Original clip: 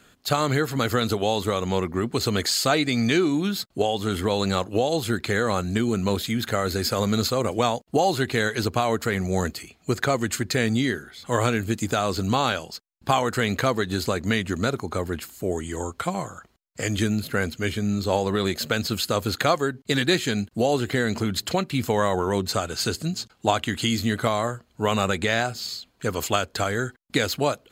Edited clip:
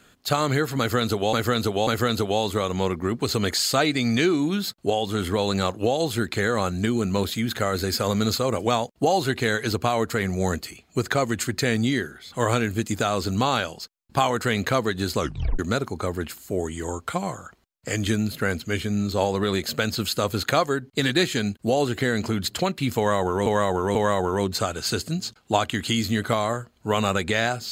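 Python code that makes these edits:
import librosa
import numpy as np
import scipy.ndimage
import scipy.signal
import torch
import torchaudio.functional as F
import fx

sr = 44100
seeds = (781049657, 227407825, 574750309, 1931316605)

y = fx.edit(x, sr, fx.repeat(start_s=0.79, length_s=0.54, count=3),
    fx.tape_stop(start_s=14.1, length_s=0.41),
    fx.repeat(start_s=21.89, length_s=0.49, count=3), tone=tone)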